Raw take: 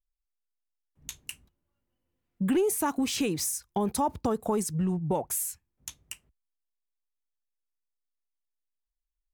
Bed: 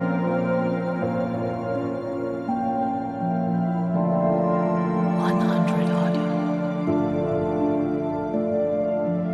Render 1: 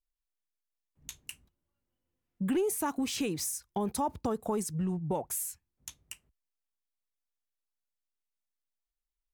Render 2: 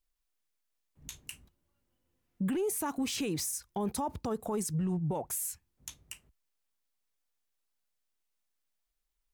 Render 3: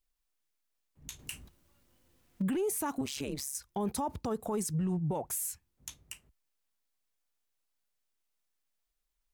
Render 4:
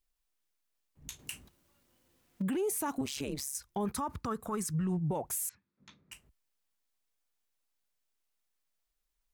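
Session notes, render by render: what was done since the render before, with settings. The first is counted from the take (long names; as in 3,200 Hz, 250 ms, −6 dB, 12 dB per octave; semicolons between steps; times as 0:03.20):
level −4 dB
in parallel at 0 dB: downward compressor, threshold −38 dBFS, peak gain reduction 12 dB; on the sum: brickwall limiter −26 dBFS, peak gain reduction 8 dB
0:01.19–0:02.42: mu-law and A-law mismatch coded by mu; 0:03.01–0:03.55: amplitude modulation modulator 140 Hz, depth 100%
0:01.13–0:02.88: low-shelf EQ 84 Hz −10.5 dB; 0:03.85–0:04.87: drawn EQ curve 150 Hz 0 dB, 790 Hz −7 dB, 1,200 Hz +9 dB, 3,000 Hz −1 dB; 0:05.49–0:06.12: loudspeaker in its box 160–3,800 Hz, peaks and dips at 200 Hz +10 dB, 750 Hz −8 dB, 1,300 Hz +3 dB, 3,000 Hz −10 dB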